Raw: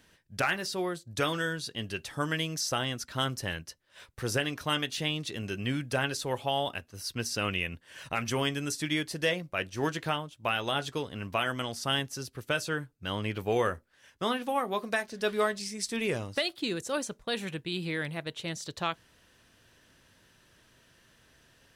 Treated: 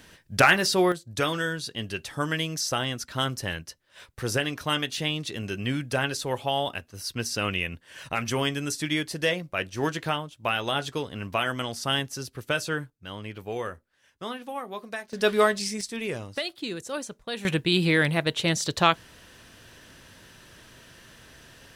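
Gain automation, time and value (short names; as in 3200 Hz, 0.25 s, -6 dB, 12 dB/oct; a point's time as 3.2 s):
+10.5 dB
from 0.92 s +3 dB
from 12.9 s -5 dB
from 15.13 s +7 dB
from 15.81 s -1 dB
from 17.45 s +11.5 dB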